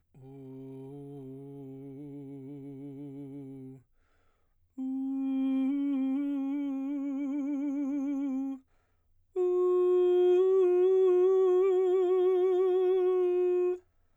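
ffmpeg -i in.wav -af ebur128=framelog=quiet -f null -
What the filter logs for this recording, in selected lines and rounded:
Integrated loudness:
  I:         -27.9 LUFS
  Threshold: -39.6 LUFS
Loudness range:
  LRA:        19.6 LU
  Threshold: -49.8 LUFS
  LRA low:   -44.9 LUFS
  LRA high:  -25.3 LUFS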